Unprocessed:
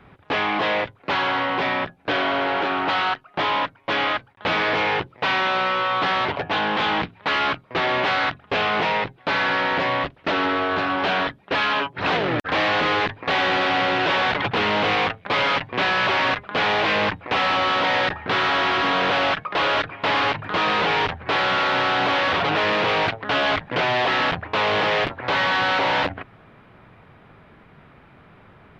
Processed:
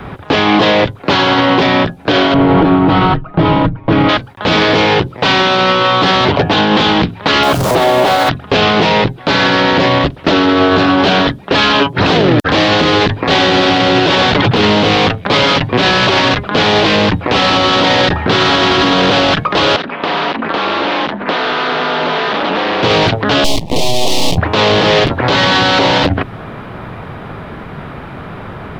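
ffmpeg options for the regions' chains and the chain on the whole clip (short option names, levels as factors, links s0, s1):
-filter_complex "[0:a]asettb=1/sr,asplit=3[s0][s1][s2];[s0]atrim=end=2.344[s3];[s1]atrim=start=2.34:end=4.09,asetpts=PTS-STARTPTS,afade=t=in:d=0.004:c=qsin,afade=t=out:st=1.746:d=0.004:c=qsin,lowpass=f=2300:p=1,aemphasis=mode=reproduction:type=riaa,aecho=1:1:6.3:0.49,atrim=end_sample=77175[s4];[s2]atrim=start=4.086[s5];[s3][s4]acrossfade=d=0.004:c1=hsin:c2=qsin[s6];[s6][s5]acrossfade=d=0.004:c1=qsin:c2=hsin,asettb=1/sr,asplit=3[s7][s8][s9];[s7]atrim=end=7.434[s10];[s8]atrim=start=7.43:end=8.29,asetpts=PTS-STARTPTS,afade=t=in:d=0.004:c=qsin,afade=t=out:st=0.856:d=0.004:c=qsin,aeval=exprs='val(0)+0.5*0.0282*sgn(val(0))':c=same,equalizer=f=680:w=1.2:g=10,acompressor=threshold=0.0501:ratio=2.5:attack=3.2:release=140:knee=1:detection=peak[s11];[s9]atrim=start=8.286[s12];[s10][s11]acrossfade=d=0.004:c1=hsin:c2=qsin[s13];[s13][s12]acrossfade=d=0.004:c1=qsin:c2=hsin,asettb=1/sr,asplit=3[s14][s15][s16];[s14]atrim=end=19.764[s17];[s15]atrim=start=19.76:end=22.83,asetpts=PTS-STARTPTS,afade=t=in:d=0.004:c=qsin,afade=t=out:st=3.066:d=0.004:c=qsin,acompressor=threshold=0.0447:ratio=12:attack=3.2:release=140:knee=1:detection=peak,aeval=exprs='val(0)*sin(2*PI*120*n/s)':c=same,highpass=190,lowpass=4400[s18];[s16]atrim=start=22.826[s19];[s17][s18]acrossfade=d=0.004:c1=hsin:c2=qsin[s20];[s20][s19]acrossfade=d=0.004:c1=qsin:c2=hsin,asettb=1/sr,asplit=3[s21][s22][s23];[s21]atrim=end=23.444[s24];[s22]atrim=start=23.44:end=24.38,asetpts=PTS-STARTPTS,afade=t=in:d=0.004:c=qsin,afade=t=out:st=0.936:d=0.004:c=qsin,aeval=exprs='max(val(0),0)':c=same,asuperstop=centerf=1500:order=4:qfactor=0.95[s25];[s23]atrim=start=24.376[s26];[s24][s25]acrossfade=d=0.004:c1=hsin:c2=qsin[s27];[s27][s26]acrossfade=d=0.004:c1=qsin:c2=hsin,equalizer=f=2300:t=o:w=0.97:g=-4.5,acrossover=split=440|3000[s28][s29][s30];[s29]acompressor=threshold=0.00891:ratio=2[s31];[s28][s31][s30]amix=inputs=3:normalize=0,alimiter=level_in=15:limit=0.891:release=50:level=0:latency=1,volume=0.891"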